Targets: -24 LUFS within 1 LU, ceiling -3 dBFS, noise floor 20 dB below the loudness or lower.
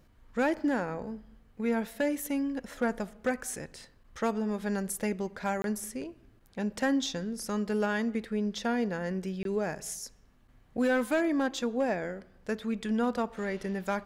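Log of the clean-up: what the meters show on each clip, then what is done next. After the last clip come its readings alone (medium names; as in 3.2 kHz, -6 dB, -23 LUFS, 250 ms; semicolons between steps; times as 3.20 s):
clipped samples 0.3%; clipping level -20.5 dBFS; dropouts 2; longest dropout 22 ms; loudness -32.0 LUFS; peak level -20.5 dBFS; loudness target -24.0 LUFS
-> clip repair -20.5 dBFS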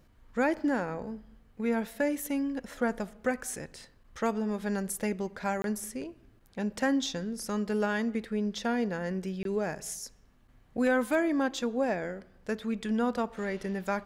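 clipped samples 0.0%; dropouts 2; longest dropout 22 ms
-> interpolate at 5.62/9.43 s, 22 ms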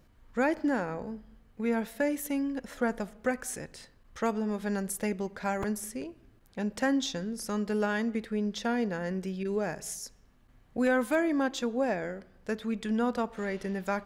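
dropouts 0; loudness -31.5 LUFS; peak level -14.5 dBFS; loudness target -24.0 LUFS
-> trim +7.5 dB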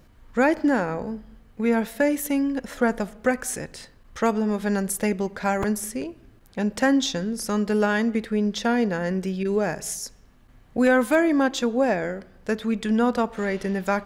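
loudness -24.0 LUFS; peak level -7.0 dBFS; noise floor -53 dBFS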